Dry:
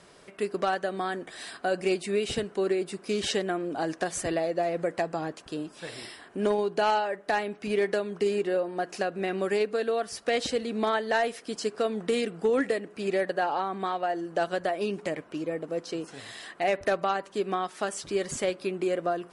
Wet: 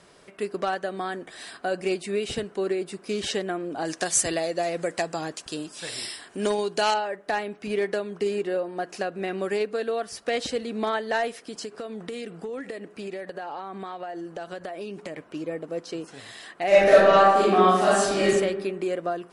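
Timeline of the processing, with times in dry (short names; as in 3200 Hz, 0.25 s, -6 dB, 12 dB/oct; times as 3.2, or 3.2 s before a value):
3.85–6.94 bell 7600 Hz +13 dB 2.5 oct
11.34–15.27 compressor, threshold -31 dBFS
16.67–18.25 reverb throw, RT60 1.2 s, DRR -10.5 dB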